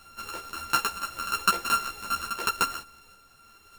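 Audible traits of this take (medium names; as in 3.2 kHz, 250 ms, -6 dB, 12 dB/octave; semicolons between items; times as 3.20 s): a buzz of ramps at a fixed pitch in blocks of 32 samples; random-step tremolo; a shimmering, thickened sound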